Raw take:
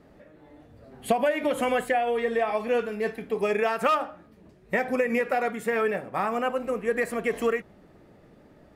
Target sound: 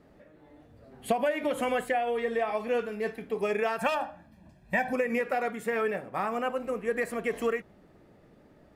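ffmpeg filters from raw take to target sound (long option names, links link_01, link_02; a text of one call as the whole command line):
ffmpeg -i in.wav -filter_complex "[0:a]asettb=1/sr,asplit=3[link_01][link_02][link_03];[link_01]atrim=end=3.784[link_04];[link_02]atrim=start=3.78:end=4.93,asetpts=PTS-STARTPTS,afade=type=in:duration=0.004:curve=qsin,afade=type=out:start_time=1.146:duration=0.004:curve=qsin,aecho=1:1:1.2:0.81,atrim=end_sample=50715[link_05];[link_03]atrim=start=4.926[link_06];[link_04][link_05]acrossfade=duration=0.004:curve1=hsin:curve2=qsin[link_07];[link_07][link_06]acrossfade=duration=0.004:curve1=qsin:curve2=hsin,volume=-3.5dB" out.wav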